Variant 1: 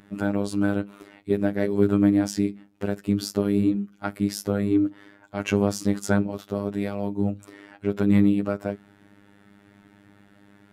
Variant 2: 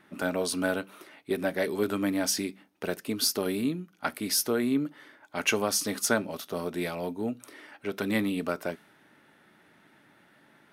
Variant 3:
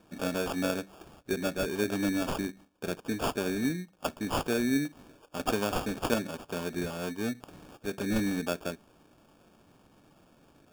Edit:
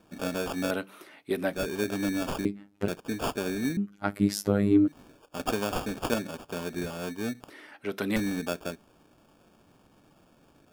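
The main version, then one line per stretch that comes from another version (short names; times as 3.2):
3
0.71–1.53 from 2
2.45–2.88 from 1
3.77–4.88 from 1
7.5–8.16 from 2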